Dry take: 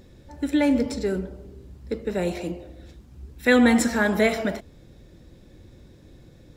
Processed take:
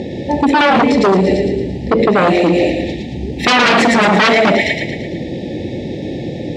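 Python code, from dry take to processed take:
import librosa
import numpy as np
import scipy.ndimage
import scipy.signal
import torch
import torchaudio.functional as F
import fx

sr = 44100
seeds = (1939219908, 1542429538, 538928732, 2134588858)

p1 = scipy.signal.sosfilt(scipy.signal.cheby1(4, 1.0, [870.0, 1800.0], 'bandstop', fs=sr, output='sos'), x)
p2 = fx.high_shelf(p1, sr, hz=2400.0, db=-8.5)
p3 = p2 + fx.echo_wet_highpass(p2, sr, ms=113, feedback_pct=51, hz=1900.0, wet_db=-3.0, dry=0)
p4 = fx.fold_sine(p3, sr, drive_db=16, ceiling_db=-8.5)
p5 = fx.bandpass_edges(p4, sr, low_hz=170.0, high_hz=4400.0)
p6 = fx.over_compress(p5, sr, threshold_db=-23.0, ratio=-1.0)
y = p5 + (p6 * librosa.db_to_amplitude(2.0))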